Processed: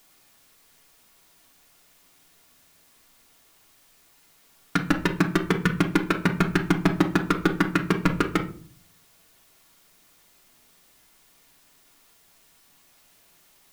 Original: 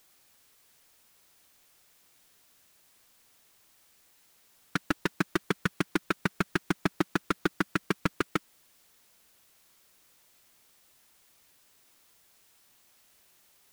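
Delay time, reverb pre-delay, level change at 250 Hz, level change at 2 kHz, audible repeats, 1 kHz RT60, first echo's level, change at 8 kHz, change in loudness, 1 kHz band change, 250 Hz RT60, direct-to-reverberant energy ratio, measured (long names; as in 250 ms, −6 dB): no echo audible, 3 ms, +8.5 dB, +5.5 dB, no echo audible, 0.40 s, no echo audible, +4.0 dB, +7.5 dB, +6.5 dB, 0.70 s, 2.0 dB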